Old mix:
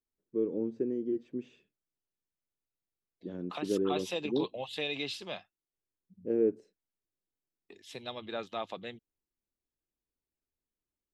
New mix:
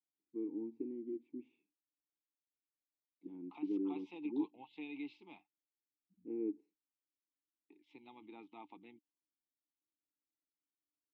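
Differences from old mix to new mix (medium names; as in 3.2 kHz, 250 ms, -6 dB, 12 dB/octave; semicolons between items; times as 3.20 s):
second voice: add distance through air 85 m; master: add vowel filter u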